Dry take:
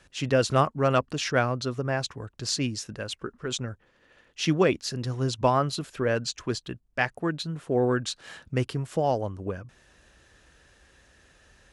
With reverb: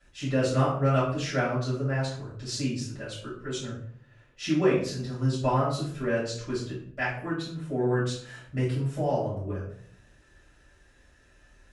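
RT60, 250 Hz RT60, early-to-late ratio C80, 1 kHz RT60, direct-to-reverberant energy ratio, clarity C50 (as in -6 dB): 0.60 s, 0.80 s, 8.0 dB, 0.50 s, -10.0 dB, 4.0 dB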